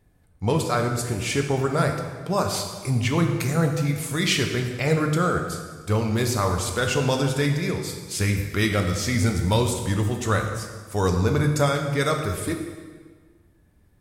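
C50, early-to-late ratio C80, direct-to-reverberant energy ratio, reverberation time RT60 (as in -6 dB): 5.5 dB, 7.0 dB, 3.0 dB, 1.5 s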